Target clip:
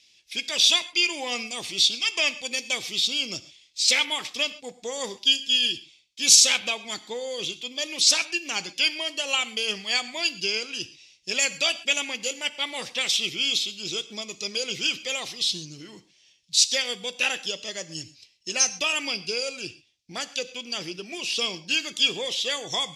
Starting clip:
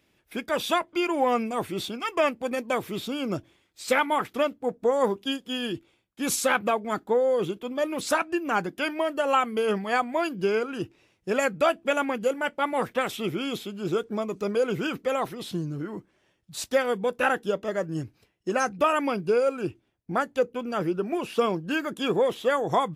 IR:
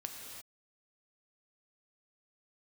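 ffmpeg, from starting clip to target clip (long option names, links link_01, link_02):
-filter_complex "[0:a]lowpass=frequency=5500:width_type=q:width=2,aexciter=amount=14.7:drive=3.4:freq=2200,asplit=2[link_01][link_02];[1:a]atrim=start_sample=2205,atrim=end_sample=6174[link_03];[link_02][link_03]afir=irnorm=-1:irlink=0,volume=-2dB[link_04];[link_01][link_04]amix=inputs=2:normalize=0,volume=-14.5dB"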